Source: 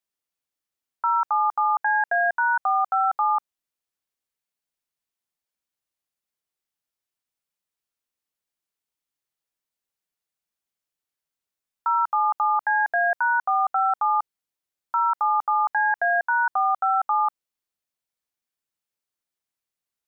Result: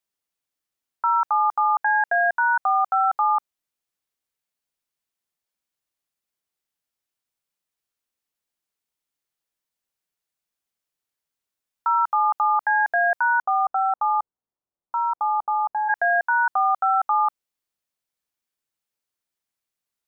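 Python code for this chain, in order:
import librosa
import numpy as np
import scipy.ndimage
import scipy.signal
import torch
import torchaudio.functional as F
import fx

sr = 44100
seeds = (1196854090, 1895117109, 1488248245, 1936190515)

y = fx.lowpass(x, sr, hz=fx.line((13.41, 1300.0), (15.88, 1000.0)), slope=24, at=(13.41, 15.88), fade=0.02)
y = F.gain(torch.from_numpy(y), 1.5).numpy()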